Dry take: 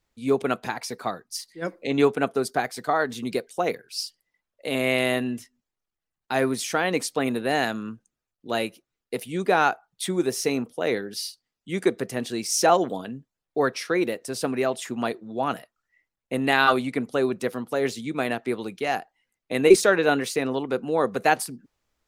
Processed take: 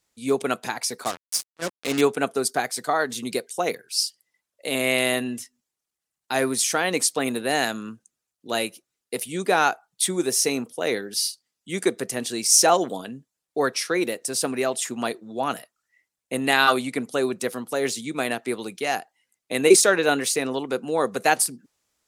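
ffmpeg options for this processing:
ffmpeg -i in.wav -filter_complex "[0:a]asettb=1/sr,asplit=3[link_01][link_02][link_03];[link_01]atrim=end=1.044[link_04];[link_02]atrim=start=1.04:end=2.01,asetpts=PTS-STARTPTS,afade=type=in:duration=0.004:curve=qsin,afade=type=out:start_time=0.966:duration=0.004:curve=qsin,acrusher=bits=4:mix=0:aa=0.5[link_05];[link_03]atrim=start=2.006[link_06];[link_04][link_05]acrossfade=duration=0.004:curve1=hsin:curve2=qsin[link_07];[link_07][link_06]acrossfade=duration=0.004:curve1=qsin:curve2=hsin,highpass=frequency=140:poles=1,equalizer=frequency=8900:width_type=o:width=1.8:gain=11" out.wav

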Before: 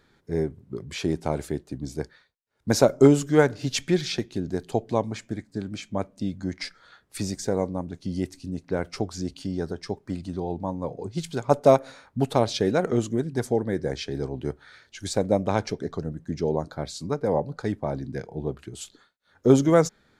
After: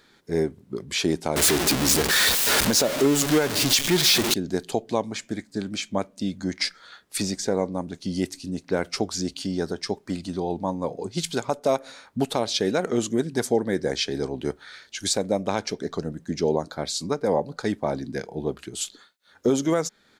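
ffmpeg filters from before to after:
ffmpeg -i in.wav -filter_complex "[0:a]asettb=1/sr,asplit=3[link_01][link_02][link_03];[link_01]atrim=end=1.364[link_04];[link_02]atrim=start=1.36:end=4.34,asetpts=PTS-STARTPTS,afade=type=in:duration=0.004:curve=qsin,afade=type=out:start_time=2.976:duration=0.004:curve=qsin,aeval=exprs='val(0)+0.5*0.106*sgn(val(0))':channel_layout=same[link_05];[link_03]atrim=start=4.336[link_06];[link_04][link_05]acrossfade=duration=0.004:curve1=hsin:curve2=qsin[link_07];[link_07][link_06]acrossfade=duration=0.004:curve1=qsin:curve2=hsin,asettb=1/sr,asplit=3[link_08][link_09][link_10];[link_08]atrim=end=7.224[link_11];[link_09]atrim=start=7.22:end=7.72,asetpts=PTS-STARTPTS,afade=type=in:duration=0.004:curve=qsin,afade=type=out:start_time=0.496:duration=0.004:curve=qsin,highshelf=frequency=6500:gain=-10.5[link_12];[link_10]atrim=start=7.716[link_13];[link_11][link_12]acrossfade=duration=0.004:curve1=hsin:curve2=qsin[link_14];[link_14][link_13]acrossfade=duration=0.004:curve1=qsin:curve2=hsin,firequalizer=gain_entry='entry(130,0);entry(190,7);entry(3500,14)':delay=0.05:min_phase=1,alimiter=limit=-6.5dB:level=0:latency=1:release=429,volume=-4.5dB" out.wav

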